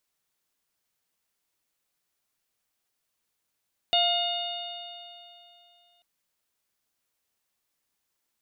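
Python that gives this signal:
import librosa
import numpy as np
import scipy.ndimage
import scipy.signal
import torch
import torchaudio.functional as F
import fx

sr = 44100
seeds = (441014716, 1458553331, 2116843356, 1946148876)

y = fx.additive_stiff(sr, length_s=2.09, hz=697.0, level_db=-23.5, upper_db=(-17.0, -16.0, 0.5, 0, -14), decay_s=2.82, stiffness=0.0036)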